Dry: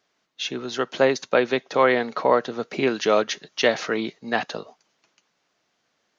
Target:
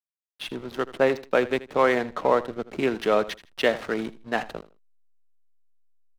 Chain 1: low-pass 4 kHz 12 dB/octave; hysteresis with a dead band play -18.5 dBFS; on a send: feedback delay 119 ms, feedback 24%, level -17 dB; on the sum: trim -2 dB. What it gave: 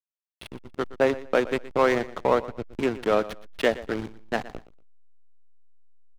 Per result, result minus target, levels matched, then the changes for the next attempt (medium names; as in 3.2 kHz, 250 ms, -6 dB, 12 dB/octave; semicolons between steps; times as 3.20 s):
echo 39 ms late; hysteresis with a dead band: distortion +8 dB
change: feedback delay 80 ms, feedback 24%, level -17 dB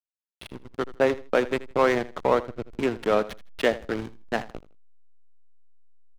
hysteresis with a dead band: distortion +8 dB
change: hysteresis with a dead band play -27.5 dBFS